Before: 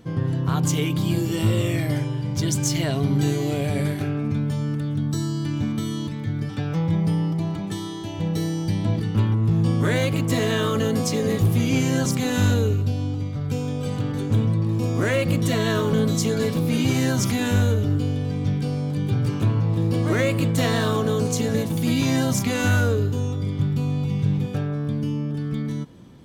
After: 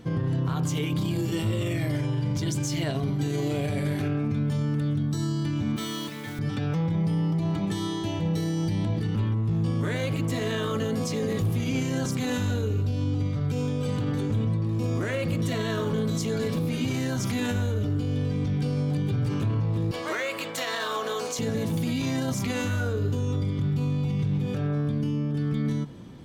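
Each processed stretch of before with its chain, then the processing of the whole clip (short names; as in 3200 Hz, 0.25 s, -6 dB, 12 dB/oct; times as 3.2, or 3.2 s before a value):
5.76–6.39 weighting filter A + modulation noise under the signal 12 dB
19.91–21.39 HPF 690 Hz + bell 9400 Hz -4.5 dB 0.42 oct
whole clip: limiter -22.5 dBFS; high shelf 7100 Hz -5 dB; de-hum 46.25 Hz, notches 37; gain +3 dB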